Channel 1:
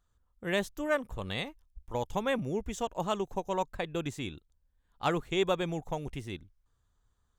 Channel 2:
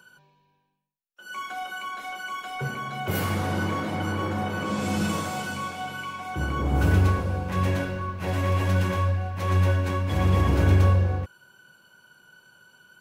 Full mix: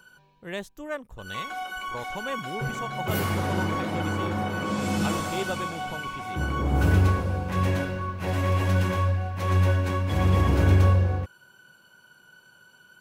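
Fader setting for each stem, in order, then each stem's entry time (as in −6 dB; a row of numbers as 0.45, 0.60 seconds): −4.0, 0.0 decibels; 0.00, 0.00 seconds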